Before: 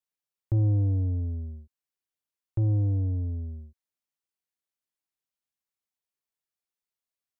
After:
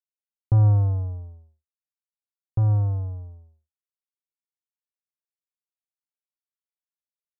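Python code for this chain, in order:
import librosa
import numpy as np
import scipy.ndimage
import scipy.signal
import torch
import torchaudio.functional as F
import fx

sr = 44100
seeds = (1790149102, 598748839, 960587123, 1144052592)

y = fx.power_curve(x, sr, exponent=3.0)
y = F.gain(torch.from_numpy(y), 7.5).numpy()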